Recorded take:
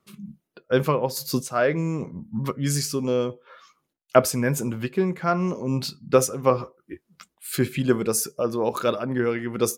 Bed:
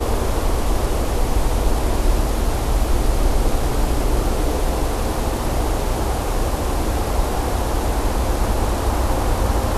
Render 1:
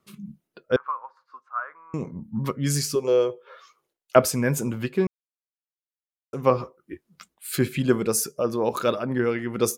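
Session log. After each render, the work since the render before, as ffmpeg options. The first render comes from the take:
ffmpeg -i in.wav -filter_complex "[0:a]asettb=1/sr,asplit=3[link_01][link_02][link_03];[link_01]atrim=end=0.764[link_04];[link_02]atrim=start=0.76:end=1.94,asetpts=PTS-STARTPTS,afade=type=in:duration=0.004:curve=qsin,afade=type=out:start_time=1.176:duration=0.004:curve=qsin,asuperpass=centerf=1200:order=4:qfactor=2.8[link_05];[link_03]atrim=start=1.936[link_06];[link_04][link_05]acrossfade=duration=0.004:curve1=hsin:curve2=qsin[link_07];[link_07][link_06]acrossfade=duration=0.004:curve1=qsin:curve2=hsin,asettb=1/sr,asplit=3[link_08][link_09][link_10];[link_08]atrim=end=2.954[link_11];[link_09]atrim=start=2.95:end=4.16,asetpts=PTS-STARTPTS,afade=type=in:duration=0.004:curve=qsin,afade=type=out:start_time=1.206:duration=0.004:curve=qsin,lowshelf=frequency=320:width_type=q:width=3:gain=-7.5[link_12];[link_10]atrim=start=4.156[link_13];[link_11][link_12]acrossfade=duration=0.004:curve1=hsin:curve2=qsin[link_14];[link_14][link_13]acrossfade=duration=0.004:curve1=qsin:curve2=hsin,asplit=3[link_15][link_16][link_17];[link_15]atrim=end=5.07,asetpts=PTS-STARTPTS,afade=type=out:start_time=5.066:duration=0.004:curve=hsin[link_18];[link_16]atrim=start=5.07:end=6.33,asetpts=PTS-STARTPTS,volume=0[link_19];[link_17]atrim=start=6.33,asetpts=PTS-STARTPTS,afade=type=in:duration=0.004:curve=hsin[link_20];[link_18][link_19][link_20]concat=n=3:v=0:a=1" out.wav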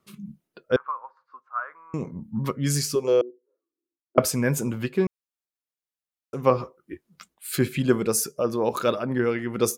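ffmpeg -i in.wav -filter_complex "[0:a]asettb=1/sr,asplit=3[link_01][link_02][link_03];[link_01]atrim=end=0.824[link_04];[link_02]atrim=start=0.82:end=1.55,asetpts=PTS-STARTPTS,afade=type=in:duration=0.004:curve=qsin,afade=type=out:start_time=0.726:duration=0.004:curve=qsin,lowpass=frequency=1800:poles=1[link_05];[link_03]atrim=start=1.546[link_06];[link_04][link_05]acrossfade=duration=0.004:curve1=hsin:curve2=qsin[link_07];[link_07][link_06]acrossfade=duration=0.004:curve1=qsin:curve2=hsin,asettb=1/sr,asplit=3[link_08][link_09][link_10];[link_08]atrim=end=3.214[link_11];[link_09]atrim=start=3.21:end=4.18,asetpts=PTS-STARTPTS,afade=type=in:duration=0.004:curve=qsin,afade=type=out:start_time=0.966:duration=0.004:curve=qsin,asuperpass=centerf=300:order=4:qfactor=3.7[link_12];[link_10]atrim=start=4.176[link_13];[link_11][link_12]acrossfade=duration=0.004:curve1=hsin:curve2=qsin[link_14];[link_14][link_13]acrossfade=duration=0.004:curve1=qsin:curve2=hsin" out.wav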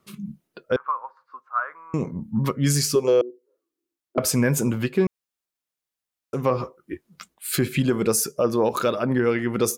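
ffmpeg -i in.wav -af "acontrast=20,alimiter=limit=-11dB:level=0:latency=1:release=137" out.wav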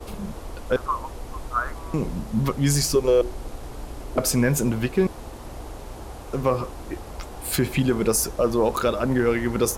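ffmpeg -i in.wav -i bed.wav -filter_complex "[1:a]volume=-16.5dB[link_01];[0:a][link_01]amix=inputs=2:normalize=0" out.wav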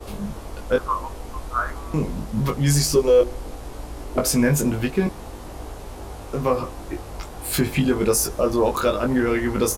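ffmpeg -i in.wav -filter_complex "[0:a]asplit=2[link_01][link_02];[link_02]adelay=20,volume=-3.5dB[link_03];[link_01][link_03]amix=inputs=2:normalize=0,asplit=2[link_04][link_05];[link_05]adelay=163.3,volume=-29dB,highshelf=frequency=4000:gain=-3.67[link_06];[link_04][link_06]amix=inputs=2:normalize=0" out.wav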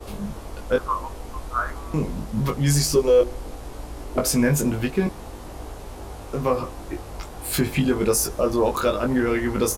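ffmpeg -i in.wav -af "volume=-1dB" out.wav

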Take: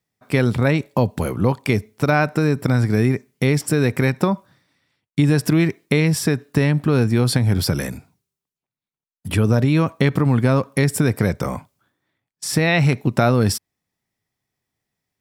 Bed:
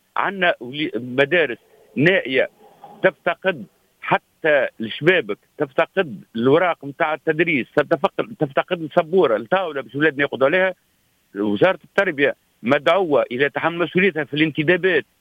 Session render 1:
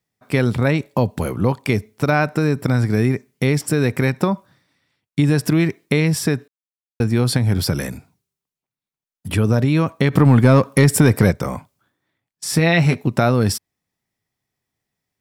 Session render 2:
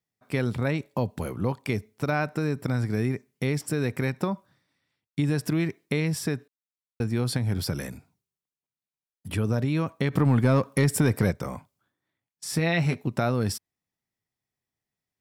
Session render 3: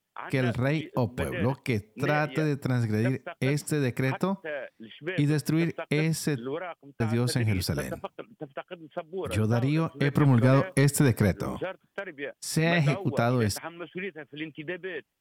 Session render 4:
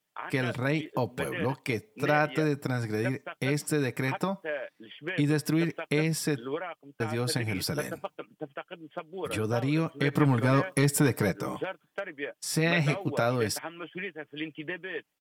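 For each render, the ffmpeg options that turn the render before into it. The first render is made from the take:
ffmpeg -i in.wav -filter_complex "[0:a]asplit=3[link_01][link_02][link_03];[link_01]afade=type=out:start_time=10.12:duration=0.02[link_04];[link_02]acontrast=54,afade=type=in:start_time=10.12:duration=0.02,afade=type=out:start_time=11.3:duration=0.02[link_05];[link_03]afade=type=in:start_time=11.3:duration=0.02[link_06];[link_04][link_05][link_06]amix=inputs=3:normalize=0,asettb=1/sr,asplit=3[link_07][link_08][link_09];[link_07]atrim=end=12.464[link_10];[link_08]atrim=start=12.46:end=13.03,asetpts=PTS-STARTPTS,afade=type=in:duration=0.004:curve=qsin,afade=type=out:start_time=0.566:duration=0.004:curve=qsin,asplit=2[link_11][link_12];[link_12]adelay=12,volume=-6dB[link_13];[link_11][link_13]amix=inputs=2:normalize=0,atrim=end_sample=25137[link_14];[link_09]atrim=start=13.026[link_15];[link_10][link_14]acrossfade=duration=0.004:curve1=hsin:curve2=qsin[link_16];[link_16][link_15]acrossfade=duration=0.004:curve1=qsin:curve2=hsin,asplit=3[link_17][link_18][link_19];[link_17]atrim=end=6.48,asetpts=PTS-STARTPTS,afade=type=out:start_time=6.476:duration=0.004:curve=hsin[link_20];[link_18]atrim=start=6.48:end=7,asetpts=PTS-STARTPTS,volume=0[link_21];[link_19]atrim=start=7,asetpts=PTS-STARTPTS,afade=type=in:duration=0.004:curve=hsin[link_22];[link_20][link_21][link_22]concat=n=3:v=0:a=1" out.wav
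ffmpeg -i in.wav -af "volume=-9dB" out.wav
ffmpeg -i in.wav -i bed.wav -filter_complex "[1:a]volume=-18.5dB[link_01];[0:a][link_01]amix=inputs=2:normalize=0" out.wav
ffmpeg -i in.wav -af "lowshelf=frequency=150:gain=-11.5,aecho=1:1:6.6:0.43" out.wav

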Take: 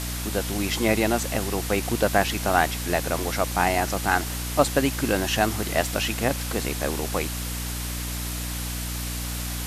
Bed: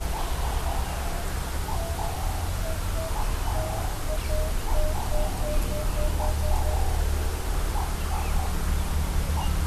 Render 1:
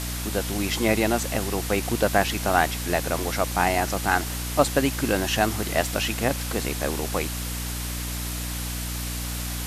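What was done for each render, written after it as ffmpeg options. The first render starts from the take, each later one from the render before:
ffmpeg -i in.wav -af anull out.wav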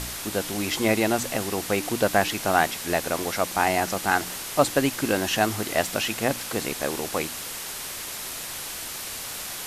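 ffmpeg -i in.wav -af "bandreject=frequency=60:width_type=h:width=4,bandreject=frequency=120:width_type=h:width=4,bandreject=frequency=180:width_type=h:width=4,bandreject=frequency=240:width_type=h:width=4,bandreject=frequency=300:width_type=h:width=4" out.wav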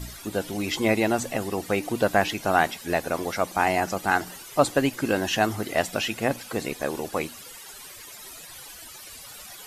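ffmpeg -i in.wav -af "afftdn=noise_reduction=15:noise_floor=-35" out.wav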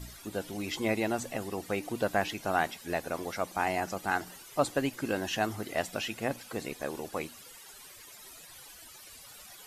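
ffmpeg -i in.wav -af "volume=-7.5dB" out.wav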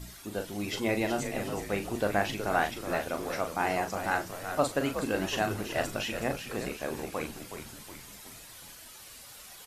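ffmpeg -i in.wav -filter_complex "[0:a]asplit=2[link_01][link_02];[link_02]adelay=39,volume=-7.5dB[link_03];[link_01][link_03]amix=inputs=2:normalize=0,asplit=2[link_04][link_05];[link_05]asplit=6[link_06][link_07][link_08][link_09][link_10][link_11];[link_06]adelay=369,afreqshift=-87,volume=-8.5dB[link_12];[link_07]adelay=738,afreqshift=-174,volume=-14.3dB[link_13];[link_08]adelay=1107,afreqshift=-261,volume=-20.2dB[link_14];[link_09]adelay=1476,afreqshift=-348,volume=-26dB[link_15];[link_10]adelay=1845,afreqshift=-435,volume=-31.9dB[link_16];[link_11]adelay=2214,afreqshift=-522,volume=-37.7dB[link_17];[link_12][link_13][link_14][link_15][link_16][link_17]amix=inputs=6:normalize=0[link_18];[link_04][link_18]amix=inputs=2:normalize=0" out.wav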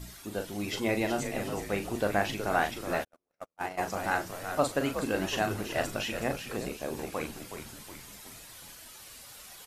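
ffmpeg -i in.wav -filter_complex "[0:a]asplit=3[link_01][link_02][link_03];[link_01]afade=type=out:start_time=3.03:duration=0.02[link_04];[link_02]agate=range=-53dB:threshold=-28dB:ratio=16:release=100:detection=peak,afade=type=in:start_time=3.03:duration=0.02,afade=type=out:start_time=3.77:duration=0.02[link_05];[link_03]afade=type=in:start_time=3.77:duration=0.02[link_06];[link_04][link_05][link_06]amix=inputs=3:normalize=0,asettb=1/sr,asplit=3[link_07][link_08][link_09];[link_07]atrim=end=6.574[link_10];[link_08]atrim=start=6.57:end=6.99,asetpts=PTS-STARTPTS,afade=type=in:duration=0.004:curve=qsin,afade=type=out:start_time=0.416:duration=0.004:curve=qsin,equalizer=frequency=1700:width=1.1:gain=-6[link_11];[link_09]atrim=start=6.986[link_12];[link_10][link_11]acrossfade=duration=0.004:curve1=hsin:curve2=qsin[link_13];[link_13][link_12]acrossfade=duration=0.004:curve1=qsin:curve2=hsin" out.wav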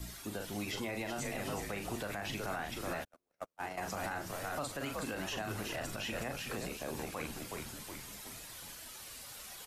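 ffmpeg -i in.wav -filter_complex "[0:a]acrossover=split=260|580|1300[link_01][link_02][link_03][link_04];[link_01]acompressor=threshold=-39dB:ratio=4[link_05];[link_02]acompressor=threshold=-47dB:ratio=4[link_06];[link_03]acompressor=threshold=-36dB:ratio=4[link_07];[link_04]acompressor=threshold=-37dB:ratio=4[link_08];[link_05][link_06][link_07][link_08]amix=inputs=4:normalize=0,alimiter=level_in=4.5dB:limit=-24dB:level=0:latency=1:release=58,volume=-4.5dB" out.wav

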